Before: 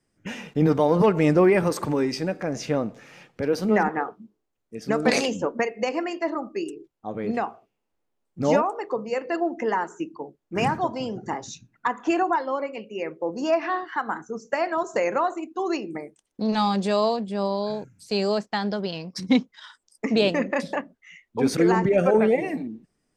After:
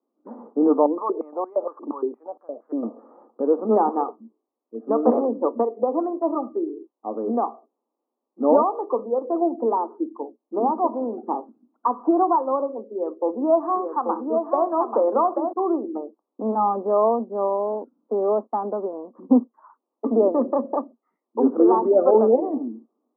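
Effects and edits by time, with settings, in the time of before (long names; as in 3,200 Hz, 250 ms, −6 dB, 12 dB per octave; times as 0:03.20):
0:00.86–0:02.83: band-pass on a step sequencer 8.6 Hz 290–3,300 Hz
0:09.04–0:10.78: low-pass filter 1,100 Hz
0:12.92–0:15.53: single-tap delay 836 ms −5 dB
whole clip: Chebyshev band-pass filter 230–1,200 Hz, order 5; automatic gain control gain up to 4.5 dB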